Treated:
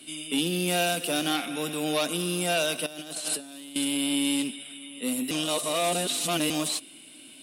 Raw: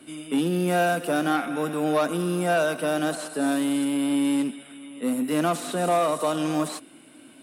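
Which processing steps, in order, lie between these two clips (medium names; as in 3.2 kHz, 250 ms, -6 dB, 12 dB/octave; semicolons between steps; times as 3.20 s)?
resonant high shelf 2.1 kHz +11 dB, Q 1.5; 2.86–3.76 s: compressor with a negative ratio -30 dBFS, ratio -0.5; 5.31–6.50 s: reverse; trim -4.5 dB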